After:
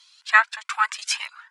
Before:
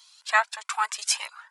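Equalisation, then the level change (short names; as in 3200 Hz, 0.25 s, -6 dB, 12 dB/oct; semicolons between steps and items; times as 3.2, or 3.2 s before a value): high shelf 2100 Hz +9.5 dB; dynamic EQ 1400 Hz, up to +6 dB, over -30 dBFS, Q 1.1; band-pass 1800 Hz, Q 0.81; -1.5 dB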